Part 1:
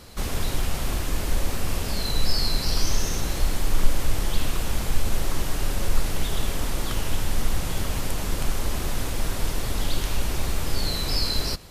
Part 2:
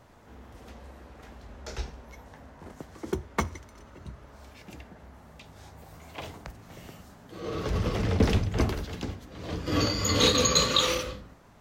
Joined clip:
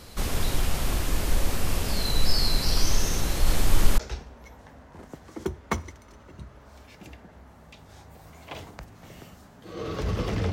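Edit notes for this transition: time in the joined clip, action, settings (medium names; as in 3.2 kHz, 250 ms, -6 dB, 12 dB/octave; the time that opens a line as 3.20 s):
part 1
3.36–3.98 s: chunks repeated in reverse 103 ms, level -1.5 dB
3.98 s: go over to part 2 from 1.65 s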